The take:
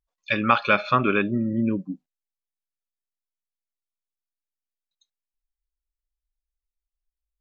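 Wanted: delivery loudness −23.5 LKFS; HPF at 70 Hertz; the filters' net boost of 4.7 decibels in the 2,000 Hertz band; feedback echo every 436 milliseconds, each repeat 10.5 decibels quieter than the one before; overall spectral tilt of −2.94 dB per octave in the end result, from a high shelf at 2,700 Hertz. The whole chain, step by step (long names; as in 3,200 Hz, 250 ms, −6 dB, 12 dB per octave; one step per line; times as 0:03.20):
high-pass filter 70 Hz
parametric band 2,000 Hz +3.5 dB
high-shelf EQ 2,700 Hz +6 dB
repeating echo 436 ms, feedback 30%, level −10.5 dB
level −3.5 dB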